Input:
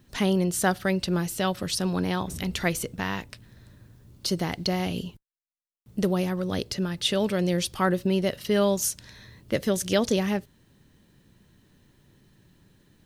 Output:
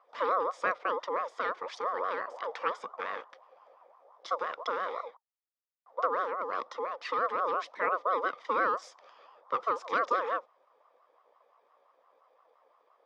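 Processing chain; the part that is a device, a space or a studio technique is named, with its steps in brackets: voice changer toy (ring modulator with a swept carrier 790 Hz, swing 20%, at 5.8 Hz; speaker cabinet 480–4300 Hz, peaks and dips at 500 Hz +8 dB, 820 Hz -6 dB, 1200 Hz +8 dB, 1800 Hz +4 dB, 2700 Hz -9 dB, 4200 Hz -10 dB); gain -5 dB

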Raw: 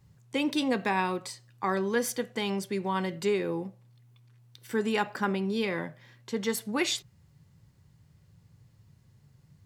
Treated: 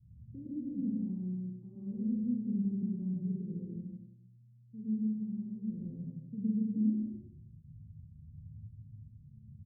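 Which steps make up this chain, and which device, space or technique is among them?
3.65–5.7 bell 350 Hz -15 dB 2.1 oct; echo 0.163 s -6.5 dB; club heard from the street (limiter -25.5 dBFS, peak gain reduction 12 dB; LPF 200 Hz 24 dB/oct; reverb RT60 0.55 s, pre-delay 0.101 s, DRR -4 dB); Schroeder reverb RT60 0.66 s, combs from 29 ms, DRR 2 dB

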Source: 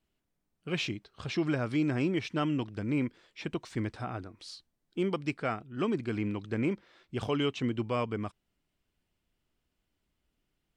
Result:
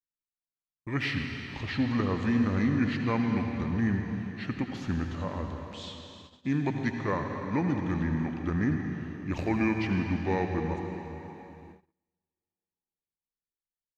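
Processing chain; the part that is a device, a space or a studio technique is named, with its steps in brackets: slowed and reverbed (varispeed -23%; reverb RT60 3.5 s, pre-delay 68 ms, DRR 3 dB); gate -50 dBFS, range -32 dB; gain +1.5 dB

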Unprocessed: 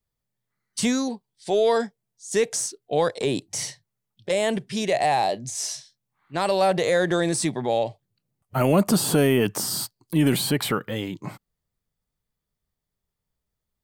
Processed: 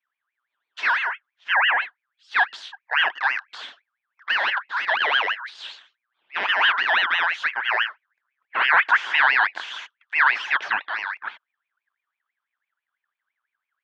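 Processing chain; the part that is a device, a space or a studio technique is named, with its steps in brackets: 1.02–1.82 treble ducked by the level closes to 800 Hz, closed at -16.5 dBFS; voice changer toy (ring modulator with a swept carrier 1800 Hz, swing 35%, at 6 Hz; speaker cabinet 500–3600 Hz, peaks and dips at 510 Hz -6 dB, 940 Hz +4 dB, 1600 Hz +7 dB, 2300 Hz -4 dB, 3300 Hz +4 dB); gain +1.5 dB

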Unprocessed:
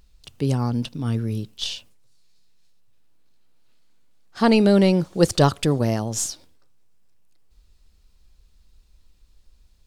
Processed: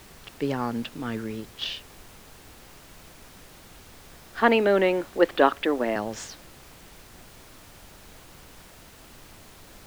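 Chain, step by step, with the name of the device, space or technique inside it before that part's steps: 4.4–5.96 elliptic band-pass 240–3500 Hz; horn gramophone (BPF 280–3100 Hz; bell 1800 Hz +8 dB; wow and flutter; pink noise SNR 19 dB)

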